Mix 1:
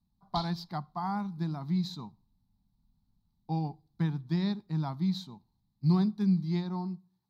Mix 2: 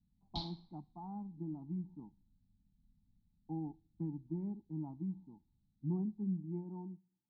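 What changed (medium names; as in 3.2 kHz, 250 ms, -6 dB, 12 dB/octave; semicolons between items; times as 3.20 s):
speech: add cascade formant filter u; master: add distance through air 120 m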